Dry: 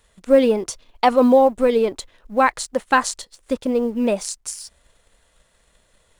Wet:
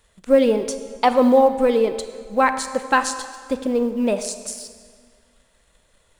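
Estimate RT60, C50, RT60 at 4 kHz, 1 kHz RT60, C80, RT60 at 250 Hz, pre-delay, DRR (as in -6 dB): 1.9 s, 10.5 dB, 1.5 s, 1.9 s, 11.5 dB, 1.8 s, 28 ms, 9.5 dB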